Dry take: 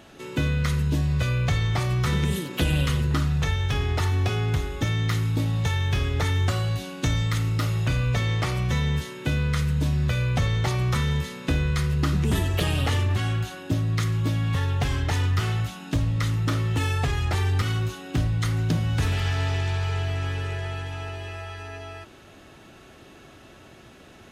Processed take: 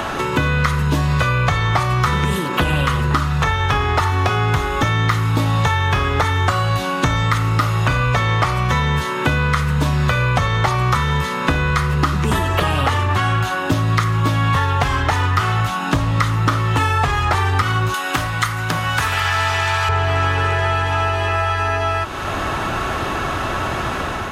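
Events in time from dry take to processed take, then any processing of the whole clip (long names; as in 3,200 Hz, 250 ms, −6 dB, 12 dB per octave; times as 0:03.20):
0:17.94–0:19.89: spectral tilt +4.5 dB per octave
whole clip: automatic gain control gain up to 11.5 dB; parametric band 1,100 Hz +14.5 dB 1.5 octaves; multiband upward and downward compressor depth 100%; level −7 dB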